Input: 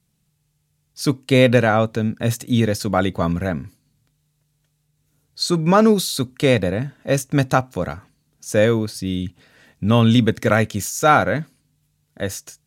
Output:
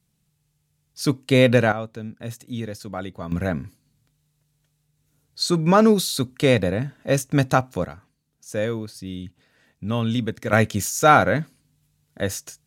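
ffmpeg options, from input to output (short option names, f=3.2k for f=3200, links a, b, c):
-af "asetnsamples=n=441:p=0,asendcmd='1.72 volume volume -12.5dB;3.32 volume volume -1.5dB;7.85 volume volume -9dB;10.53 volume volume 0dB',volume=-2dB"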